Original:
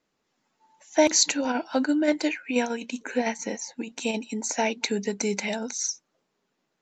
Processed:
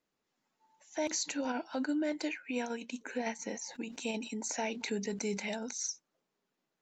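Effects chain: limiter -17 dBFS, peak gain reduction 9 dB; 3.52–5.79 sustainer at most 86 dB/s; gain -8 dB

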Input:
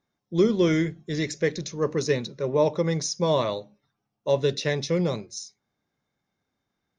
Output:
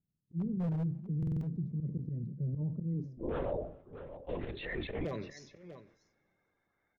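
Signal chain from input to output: bin magnitudes rounded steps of 30 dB; low-pass sweep 160 Hz -> 2100 Hz, 2.78–4.22; auto swell 0.164 s; wavefolder -17.5 dBFS; echo 0.641 s -20.5 dB; limiter -26.5 dBFS, peak gain reduction 9.5 dB; 3.17–5.05 LPC vocoder at 8 kHz whisper; two-slope reverb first 0.6 s, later 3.7 s, from -16 dB, DRR 19 dB; stuck buffer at 1.18, samples 2048, times 4; sustainer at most 110 dB/s; gain -2.5 dB

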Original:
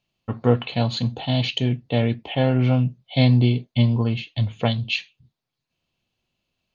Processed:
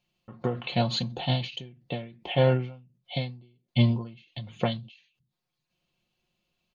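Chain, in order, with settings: comb 5.6 ms, depth 59%; ending taper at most 110 dB/s; gain -2 dB

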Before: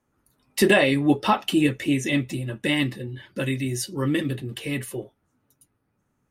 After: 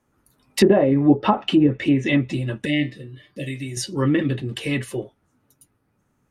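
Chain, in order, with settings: 2.69–3.52 spectral repair 740–1700 Hz after; 2.65–3.77 resonator 150 Hz, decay 0.18 s, harmonics all, mix 80%; treble ducked by the level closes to 690 Hz, closed at -15 dBFS; gain +4.5 dB

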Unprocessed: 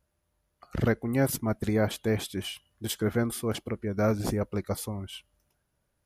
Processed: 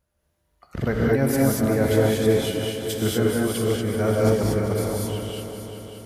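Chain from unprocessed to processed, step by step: multi-head echo 0.195 s, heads all three, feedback 56%, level -14 dB; non-linear reverb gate 0.26 s rising, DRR -3.5 dB

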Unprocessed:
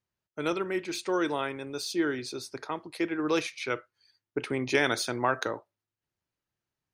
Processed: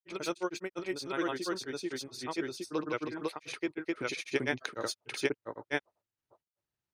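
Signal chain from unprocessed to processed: grains, spray 0.946 s, pitch spread up and down by 0 st; gain -3 dB

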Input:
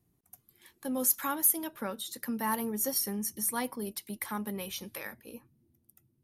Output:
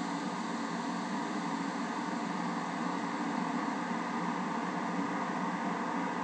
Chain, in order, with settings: vibrato 0.44 Hz 59 cents; noise vocoder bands 16; Paulstretch 43×, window 1.00 s, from 2.3

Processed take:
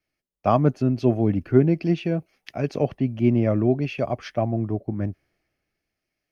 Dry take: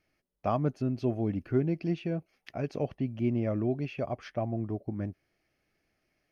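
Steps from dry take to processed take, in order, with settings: three-band expander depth 40%; gain +9 dB

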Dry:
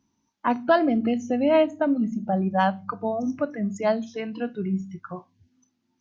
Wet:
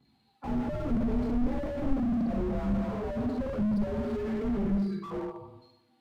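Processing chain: inharmonic rescaling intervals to 89%; phaser 1.1 Hz, delay 3.8 ms, feedback 64%; 1.63–2.32 small resonant body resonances 250/640 Hz, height 12 dB, ringing for 60 ms; reverb RT60 1.0 s, pre-delay 3 ms, DRR -5.5 dB; slew limiter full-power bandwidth 11 Hz

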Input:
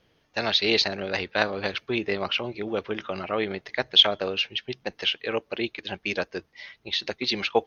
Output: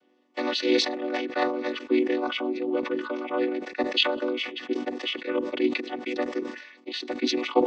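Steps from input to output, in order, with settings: chord vocoder minor triad, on B3; sustainer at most 78 dB/s

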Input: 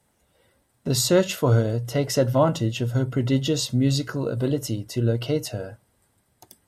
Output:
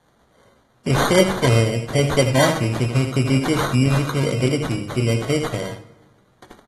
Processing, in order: early reflections 16 ms -9 dB, 79 ms -8.5 dB; sample-and-hold 17×; in parallel at 0 dB: compressor 6:1, threshold -27 dBFS, peak gain reduction 14.5 dB; on the sum: bell 66 Hz -4.5 dB 1.6 oct; on a send at -12 dB: reverb RT60 1.1 s, pre-delay 3 ms; on the sum: AAC 32 kbps 44100 Hz

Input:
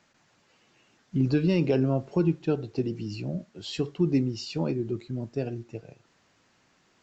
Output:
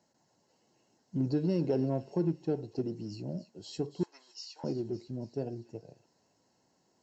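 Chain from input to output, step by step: band shelf 2200 Hz -11.5 dB; in parallel at -9 dB: one-sided clip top -32 dBFS, bottom -21.5 dBFS; 4.03–4.64 on the sum: Chebyshev band-pass 930–6500 Hz, order 3; notch comb 1200 Hz; on a send: thin delay 0.281 s, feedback 54%, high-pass 2100 Hz, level -12 dB; on the sum: gain -6.5 dB

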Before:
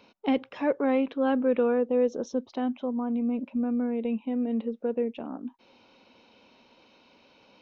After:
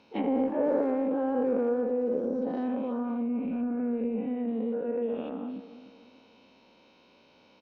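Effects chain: spectral dilation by 0.24 s; on a send: feedback echo 0.298 s, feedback 41%, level -14 dB; on the sum: treble ducked by the level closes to 1000 Hz, closed at -18.5 dBFS; bell 180 Hz +2.5 dB 2.8 oct; speakerphone echo 80 ms, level -15 dB; gain -8 dB

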